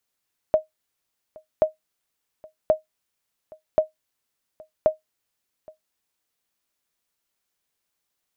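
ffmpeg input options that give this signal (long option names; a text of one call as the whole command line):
ffmpeg -f lavfi -i "aevalsrc='0.376*(sin(2*PI*625*mod(t,1.08))*exp(-6.91*mod(t,1.08)/0.14)+0.0501*sin(2*PI*625*max(mod(t,1.08)-0.82,0))*exp(-6.91*max(mod(t,1.08)-0.82,0)/0.14))':duration=5.4:sample_rate=44100" out.wav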